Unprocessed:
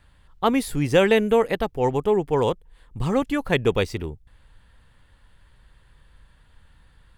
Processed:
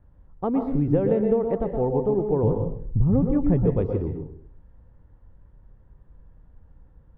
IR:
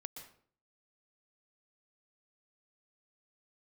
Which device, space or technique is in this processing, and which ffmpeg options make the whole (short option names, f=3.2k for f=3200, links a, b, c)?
television next door: -filter_complex "[0:a]asettb=1/sr,asplit=3[a][b][c];[a]atrim=end=2.434[d];[b]atrim=start=2.43:end=3.66,asetpts=PTS-STARTPTS,afade=t=in:d=0.004:c=qsin,afade=t=out:st=1.226:d=0.004:c=qsin,bass=f=250:g=13,treble=f=4k:g=-6[e];[c]atrim=start=3.656[f];[d][e]acrossfade=d=0.004:c1=hsin:c2=qsin[g];[g][f]acrossfade=d=0.004:c1=qsin:c2=hsin,acompressor=threshold=-20dB:ratio=5,lowpass=590[h];[1:a]atrim=start_sample=2205[i];[h][i]afir=irnorm=-1:irlink=0,volume=7.5dB"